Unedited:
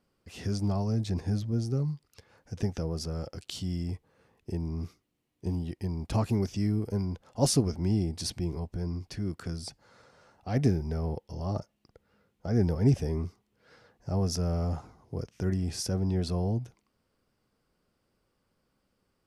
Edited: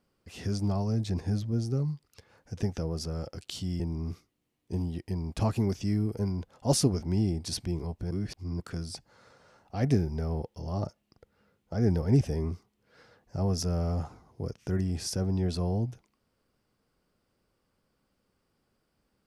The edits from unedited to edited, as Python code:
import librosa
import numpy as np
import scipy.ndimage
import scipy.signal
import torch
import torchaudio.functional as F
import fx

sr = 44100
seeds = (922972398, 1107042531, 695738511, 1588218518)

y = fx.edit(x, sr, fx.cut(start_s=3.8, length_s=0.73),
    fx.reverse_span(start_s=8.84, length_s=0.49), tone=tone)